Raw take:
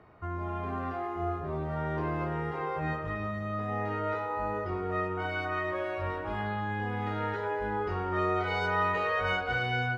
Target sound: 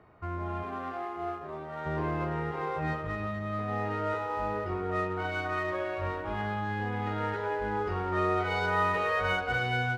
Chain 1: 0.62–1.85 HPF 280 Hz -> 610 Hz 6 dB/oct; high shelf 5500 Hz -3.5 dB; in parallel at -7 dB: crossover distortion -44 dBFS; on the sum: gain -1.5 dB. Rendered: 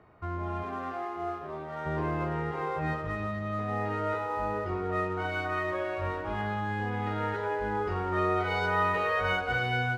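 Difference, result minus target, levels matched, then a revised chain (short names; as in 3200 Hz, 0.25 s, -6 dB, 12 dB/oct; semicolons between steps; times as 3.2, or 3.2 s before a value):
crossover distortion: distortion -7 dB
0.62–1.85 HPF 280 Hz -> 610 Hz 6 dB/oct; high shelf 5500 Hz -3.5 dB; in parallel at -7 dB: crossover distortion -37.5 dBFS; on the sum: gain -1.5 dB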